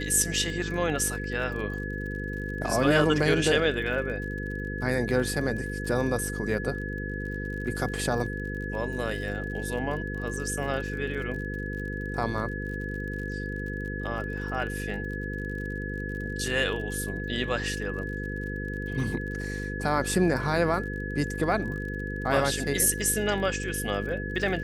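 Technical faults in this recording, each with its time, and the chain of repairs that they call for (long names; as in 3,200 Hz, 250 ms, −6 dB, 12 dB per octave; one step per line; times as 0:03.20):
mains buzz 50 Hz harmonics 10 −34 dBFS
surface crackle 46 per second −37 dBFS
whistle 1,700 Hz −36 dBFS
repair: click removal
notch filter 1,700 Hz, Q 30
hum removal 50 Hz, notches 10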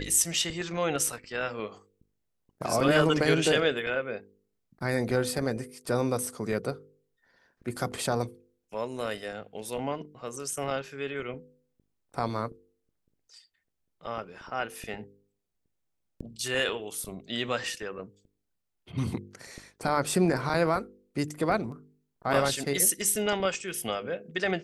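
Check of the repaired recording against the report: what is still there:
none of them is left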